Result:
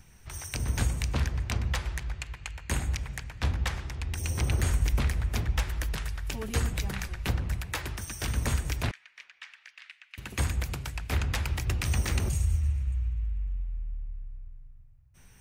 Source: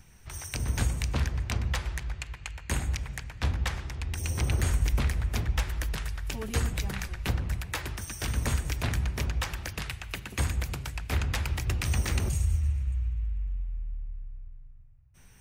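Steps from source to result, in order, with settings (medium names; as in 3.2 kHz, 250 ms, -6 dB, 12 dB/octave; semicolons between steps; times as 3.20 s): 8.91–10.18 s: ladder band-pass 2.5 kHz, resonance 35%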